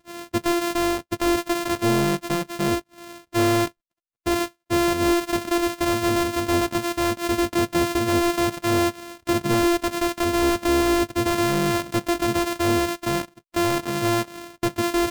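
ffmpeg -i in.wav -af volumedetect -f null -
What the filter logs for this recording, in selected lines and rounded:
mean_volume: -22.9 dB
max_volume: -15.9 dB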